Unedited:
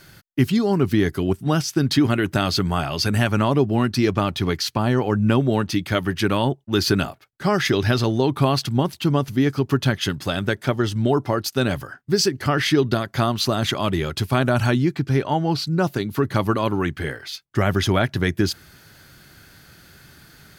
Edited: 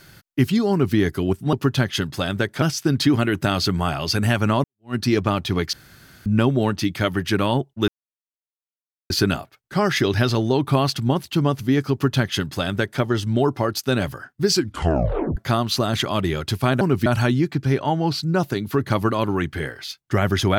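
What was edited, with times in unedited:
0:00.71–0:00.96: duplicate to 0:14.50
0:03.55–0:03.86: fade in exponential
0:04.64–0:05.17: fill with room tone
0:06.79: splice in silence 1.22 s
0:09.61–0:10.70: duplicate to 0:01.53
0:12.21: tape stop 0.85 s

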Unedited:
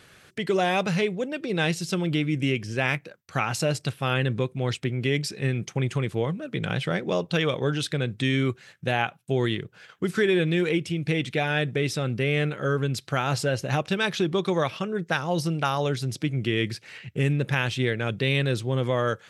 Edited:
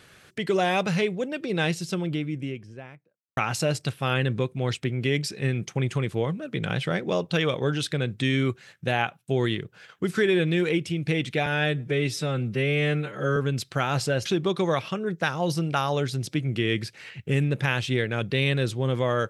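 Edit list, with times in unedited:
0:01.45–0:03.37: fade out and dull
0:11.46–0:12.73: time-stretch 1.5×
0:13.62–0:14.14: remove

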